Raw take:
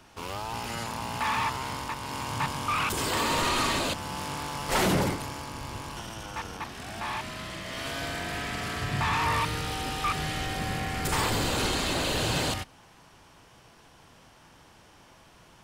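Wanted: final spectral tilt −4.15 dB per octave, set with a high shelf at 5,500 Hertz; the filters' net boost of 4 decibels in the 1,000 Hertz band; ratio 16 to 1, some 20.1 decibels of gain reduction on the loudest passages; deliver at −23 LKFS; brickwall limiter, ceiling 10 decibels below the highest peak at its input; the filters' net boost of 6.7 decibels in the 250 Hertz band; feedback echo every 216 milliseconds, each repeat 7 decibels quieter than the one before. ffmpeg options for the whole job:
ffmpeg -i in.wav -af "equalizer=frequency=250:width_type=o:gain=8.5,equalizer=frequency=1000:width_type=o:gain=4,highshelf=frequency=5500:gain=7.5,acompressor=threshold=-37dB:ratio=16,alimiter=level_in=12.5dB:limit=-24dB:level=0:latency=1,volume=-12.5dB,aecho=1:1:216|432|648|864|1080:0.447|0.201|0.0905|0.0407|0.0183,volume=21.5dB" out.wav

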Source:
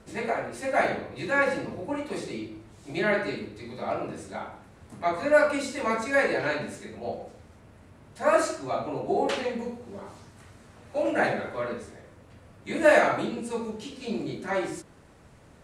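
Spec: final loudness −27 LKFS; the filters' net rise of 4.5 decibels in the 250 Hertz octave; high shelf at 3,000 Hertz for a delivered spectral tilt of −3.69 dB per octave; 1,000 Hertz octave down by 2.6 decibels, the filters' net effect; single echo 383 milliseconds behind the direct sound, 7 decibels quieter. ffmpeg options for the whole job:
ffmpeg -i in.wav -af "equalizer=frequency=250:width_type=o:gain=6,equalizer=frequency=1000:width_type=o:gain=-5,highshelf=frequency=3000:gain=5,aecho=1:1:383:0.447" out.wav

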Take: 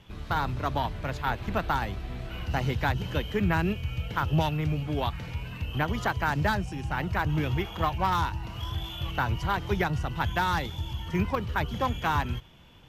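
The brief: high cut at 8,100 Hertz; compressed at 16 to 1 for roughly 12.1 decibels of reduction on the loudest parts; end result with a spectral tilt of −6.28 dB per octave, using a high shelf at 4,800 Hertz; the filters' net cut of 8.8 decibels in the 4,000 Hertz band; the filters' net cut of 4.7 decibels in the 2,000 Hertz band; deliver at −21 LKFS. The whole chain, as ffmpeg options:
ffmpeg -i in.wav -af "lowpass=8100,equalizer=frequency=2000:width_type=o:gain=-4.5,equalizer=frequency=4000:width_type=o:gain=-7,highshelf=frequency=4800:gain=-6.5,acompressor=threshold=-33dB:ratio=16,volume=18dB" out.wav

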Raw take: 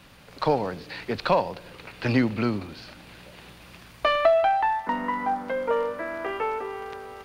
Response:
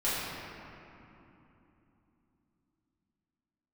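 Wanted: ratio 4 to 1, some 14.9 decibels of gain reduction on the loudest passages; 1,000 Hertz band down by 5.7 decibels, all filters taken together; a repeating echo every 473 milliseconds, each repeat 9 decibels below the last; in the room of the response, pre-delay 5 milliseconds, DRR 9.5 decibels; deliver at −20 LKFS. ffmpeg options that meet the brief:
-filter_complex "[0:a]equalizer=frequency=1000:width_type=o:gain=-7.5,acompressor=threshold=-36dB:ratio=4,aecho=1:1:473|946|1419|1892:0.355|0.124|0.0435|0.0152,asplit=2[link_01][link_02];[1:a]atrim=start_sample=2205,adelay=5[link_03];[link_02][link_03]afir=irnorm=-1:irlink=0,volume=-20dB[link_04];[link_01][link_04]amix=inputs=2:normalize=0,volume=18dB"

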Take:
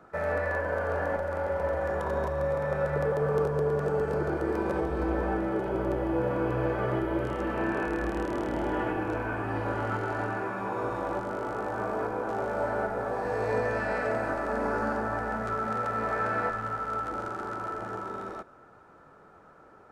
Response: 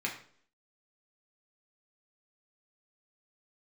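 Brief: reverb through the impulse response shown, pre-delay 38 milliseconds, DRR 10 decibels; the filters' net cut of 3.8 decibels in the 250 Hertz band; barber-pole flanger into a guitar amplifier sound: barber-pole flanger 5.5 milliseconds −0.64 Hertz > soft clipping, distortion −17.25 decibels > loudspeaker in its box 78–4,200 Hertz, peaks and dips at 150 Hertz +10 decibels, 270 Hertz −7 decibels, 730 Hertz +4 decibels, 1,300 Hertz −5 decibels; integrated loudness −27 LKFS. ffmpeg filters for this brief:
-filter_complex "[0:a]equalizer=frequency=250:width_type=o:gain=-6.5,asplit=2[link_01][link_02];[1:a]atrim=start_sample=2205,adelay=38[link_03];[link_02][link_03]afir=irnorm=-1:irlink=0,volume=-15dB[link_04];[link_01][link_04]amix=inputs=2:normalize=0,asplit=2[link_05][link_06];[link_06]adelay=5.5,afreqshift=-0.64[link_07];[link_05][link_07]amix=inputs=2:normalize=1,asoftclip=threshold=-27.5dB,highpass=78,equalizer=frequency=150:width_type=q:width=4:gain=10,equalizer=frequency=270:width_type=q:width=4:gain=-7,equalizer=frequency=730:width_type=q:width=4:gain=4,equalizer=frequency=1300:width_type=q:width=4:gain=-5,lowpass=frequency=4200:width=0.5412,lowpass=frequency=4200:width=1.3066,volume=8.5dB"

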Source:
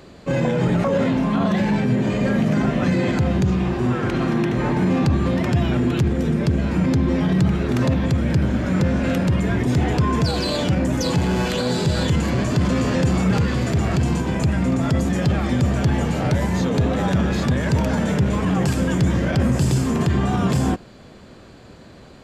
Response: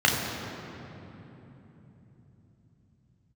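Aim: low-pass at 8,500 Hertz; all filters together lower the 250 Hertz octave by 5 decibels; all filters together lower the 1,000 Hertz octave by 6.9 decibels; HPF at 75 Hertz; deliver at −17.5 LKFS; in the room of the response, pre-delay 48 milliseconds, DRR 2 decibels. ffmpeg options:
-filter_complex "[0:a]highpass=75,lowpass=8500,equalizer=frequency=250:width_type=o:gain=-6.5,equalizer=frequency=1000:width_type=o:gain=-9,asplit=2[link_01][link_02];[1:a]atrim=start_sample=2205,adelay=48[link_03];[link_02][link_03]afir=irnorm=-1:irlink=0,volume=-19.5dB[link_04];[link_01][link_04]amix=inputs=2:normalize=0,volume=1.5dB"

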